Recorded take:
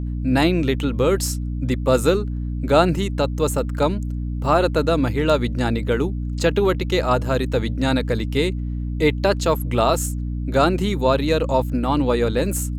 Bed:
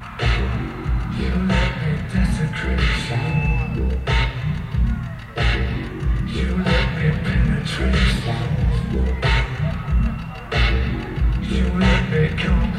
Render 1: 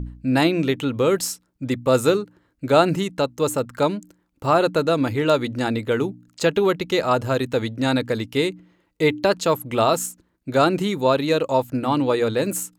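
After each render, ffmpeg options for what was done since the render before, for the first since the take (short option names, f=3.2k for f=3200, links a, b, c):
-af "bandreject=f=60:t=h:w=4,bandreject=f=120:t=h:w=4,bandreject=f=180:t=h:w=4,bandreject=f=240:t=h:w=4,bandreject=f=300:t=h:w=4"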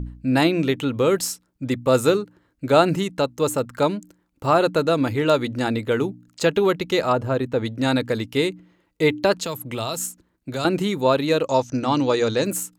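-filter_complex "[0:a]asplit=3[a][b][c];[a]afade=t=out:st=7.11:d=0.02[d];[b]highshelf=f=2.4k:g=-12,afade=t=in:st=7.11:d=0.02,afade=t=out:st=7.64:d=0.02[e];[c]afade=t=in:st=7.64:d=0.02[f];[d][e][f]amix=inputs=3:normalize=0,asettb=1/sr,asplit=3[g][h][i];[g]atrim=end=9.454[j];[h]atrim=start=9.45:end=10.65,asetpts=PTS-STARTPTS,afade=t=in:d=0.004:c=qsin,afade=t=out:st=1.196:d=0.004:c=qsin,acrossover=split=130|3000[k][l][m];[l]acompressor=threshold=-28dB:ratio=3:attack=3.2:release=140:knee=2.83:detection=peak[n];[k][n][m]amix=inputs=3:normalize=0[o];[i]atrim=start=10.646[p];[j][o]acrossfade=d=0.004:c1=hsin:c2=qsin[q];[q][p]acrossfade=d=0.004:c1=qsin:c2=hsin,asettb=1/sr,asplit=3[r][s][t];[r]atrim=end=11.474[u];[s]atrim=start=11.47:end=12.45,asetpts=PTS-STARTPTS,afade=t=in:d=0.004:c=qsin,afade=t=out:st=0.976:d=0.004:c=qsin,lowpass=f=6k:t=q:w=15[v];[t]atrim=start=12.446[w];[u][v]acrossfade=d=0.004:c1=hsin:c2=qsin[x];[x][w]acrossfade=d=0.004:c1=qsin:c2=hsin"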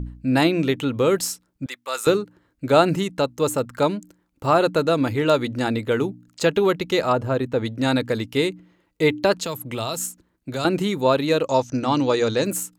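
-filter_complex "[0:a]asettb=1/sr,asplit=3[a][b][c];[a]atrim=end=1.664[d];[b]atrim=start=1.66:end=2.07,asetpts=PTS-STARTPTS,afade=t=in:d=0.004:c=qsin,afade=t=out:st=0.406:d=0.004:c=qsin,highpass=1.2k[e];[c]atrim=start=2.066[f];[d][e]acrossfade=d=0.004:c1=hsin:c2=qsin[g];[g][f]acrossfade=d=0.004:c1=qsin:c2=hsin"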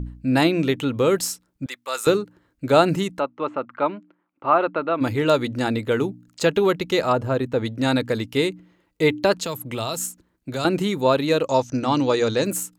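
-filter_complex "[0:a]asplit=3[a][b][c];[a]afade=t=out:st=3.18:d=0.02[d];[b]highpass=320,equalizer=f=460:t=q:w=4:g=-8,equalizer=f=1.2k:t=q:w=4:g=4,equalizer=f=1.7k:t=q:w=4:g=-4,lowpass=f=2.6k:w=0.5412,lowpass=f=2.6k:w=1.3066,afade=t=in:st=3.18:d=0.02,afade=t=out:st=5:d=0.02[e];[c]afade=t=in:st=5:d=0.02[f];[d][e][f]amix=inputs=3:normalize=0"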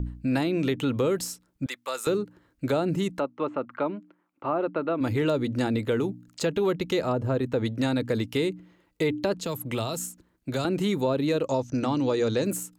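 -filter_complex "[0:a]acrossover=split=520[a][b];[a]alimiter=limit=-20dB:level=0:latency=1[c];[b]acompressor=threshold=-31dB:ratio=6[d];[c][d]amix=inputs=2:normalize=0"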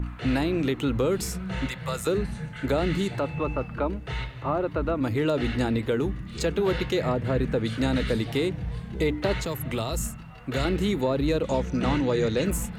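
-filter_complex "[1:a]volume=-13.5dB[a];[0:a][a]amix=inputs=2:normalize=0"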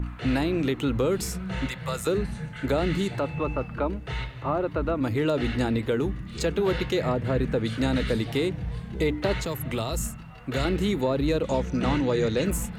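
-af anull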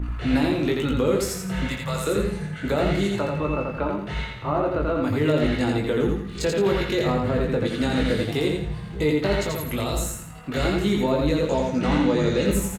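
-filter_complex "[0:a]asplit=2[a][b];[b]adelay=20,volume=-4.5dB[c];[a][c]amix=inputs=2:normalize=0,aecho=1:1:85|170|255|340|425:0.708|0.255|0.0917|0.033|0.0119"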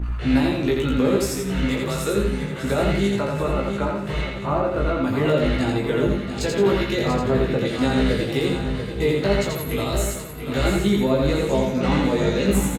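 -filter_complex "[0:a]asplit=2[a][b];[b]adelay=15,volume=-5dB[c];[a][c]amix=inputs=2:normalize=0,aecho=1:1:689|1378|2067|2756|3445:0.355|0.156|0.0687|0.0302|0.0133"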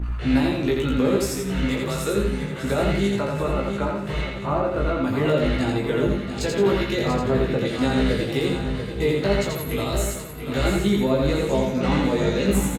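-af "volume=-1dB"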